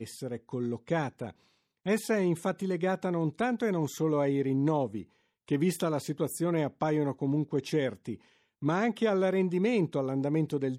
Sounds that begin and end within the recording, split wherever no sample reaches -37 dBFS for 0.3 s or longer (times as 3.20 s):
1.86–5.02 s
5.48–8.15 s